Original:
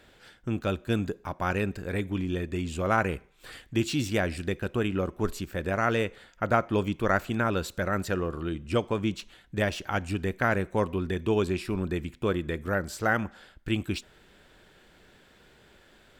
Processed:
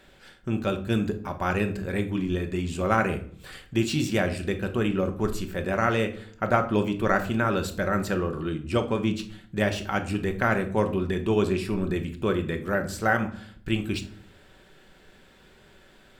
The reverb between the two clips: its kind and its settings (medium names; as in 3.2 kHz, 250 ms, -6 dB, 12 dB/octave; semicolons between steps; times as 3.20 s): simulated room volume 630 m³, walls furnished, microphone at 1.1 m; trim +1 dB